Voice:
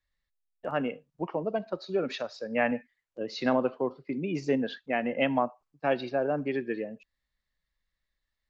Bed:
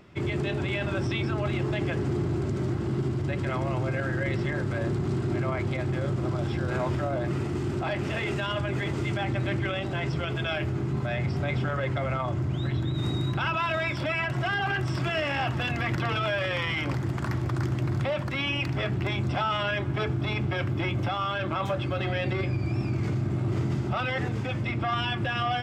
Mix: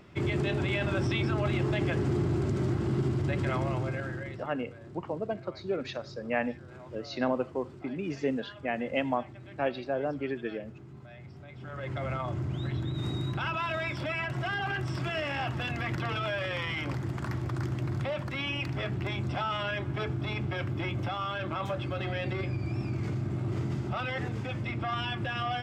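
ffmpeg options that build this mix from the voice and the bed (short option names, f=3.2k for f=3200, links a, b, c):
-filter_complex "[0:a]adelay=3750,volume=-3dB[a];[1:a]volume=14.5dB,afade=t=out:st=3.51:d=0.96:silence=0.112202,afade=t=in:st=11.57:d=0.49:silence=0.177828[b];[a][b]amix=inputs=2:normalize=0"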